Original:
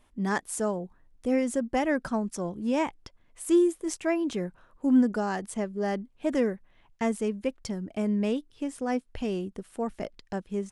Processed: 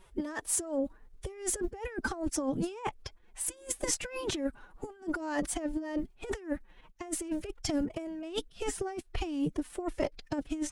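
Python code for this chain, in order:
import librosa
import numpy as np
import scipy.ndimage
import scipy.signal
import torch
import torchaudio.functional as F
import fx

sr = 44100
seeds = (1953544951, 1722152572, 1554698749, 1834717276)

y = fx.pitch_keep_formants(x, sr, semitones=7.5)
y = fx.over_compress(y, sr, threshold_db=-33.0, ratio=-0.5)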